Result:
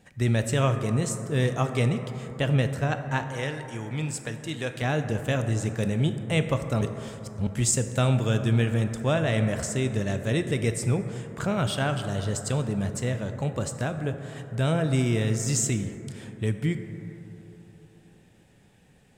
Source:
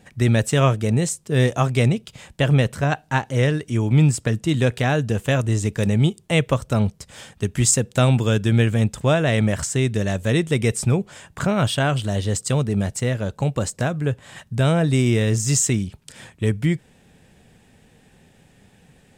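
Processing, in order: 3.26–4.82 s: bass shelf 410 Hz -11 dB; 6.81–7.47 s: reverse; reverberation RT60 3.4 s, pre-delay 13 ms, DRR 7.5 dB; trim -6.5 dB

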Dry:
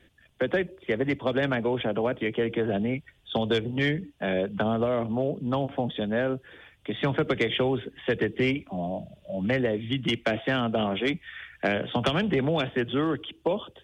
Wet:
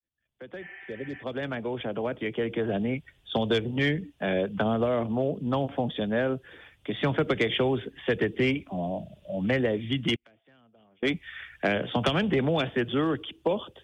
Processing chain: fade-in on the opening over 3.17 s; 0.64–1.20 s: spectral replace 650–3200 Hz before; 10.15–11.03 s: inverted gate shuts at -31 dBFS, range -34 dB

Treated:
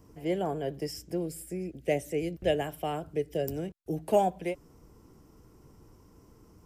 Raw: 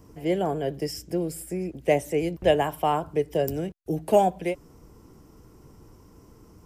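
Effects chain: 1.26–3.47 s: peaking EQ 990 Hz -13 dB 0.57 oct; trim -5 dB

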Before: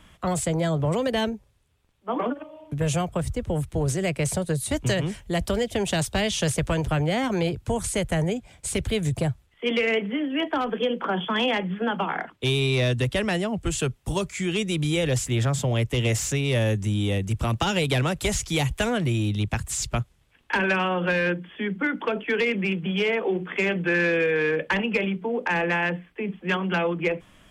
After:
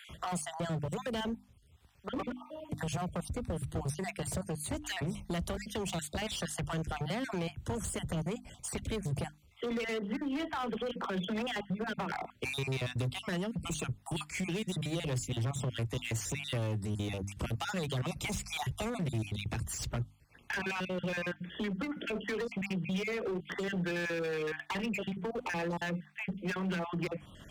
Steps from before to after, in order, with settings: random holes in the spectrogram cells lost 37%; compression 2.5:1, threshold -30 dBFS, peak gain reduction 7.5 dB; hard clipper -30 dBFS, distortion -10 dB; high-pass 43 Hz; bass shelf 230 Hz +5.5 dB; hum notches 50/100/150/200/250/300 Hz; three bands compressed up and down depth 40%; trim -3 dB

